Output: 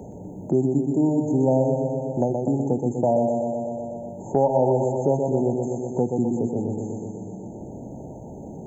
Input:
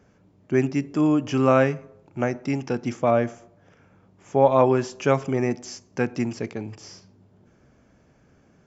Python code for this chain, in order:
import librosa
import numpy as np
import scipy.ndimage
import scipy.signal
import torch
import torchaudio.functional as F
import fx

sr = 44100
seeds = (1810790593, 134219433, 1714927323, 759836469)

y = fx.brickwall_bandstop(x, sr, low_hz=960.0, high_hz=6300.0)
y = fx.echo_feedback(y, sr, ms=123, feedback_pct=60, wet_db=-5)
y = fx.band_squash(y, sr, depth_pct=70)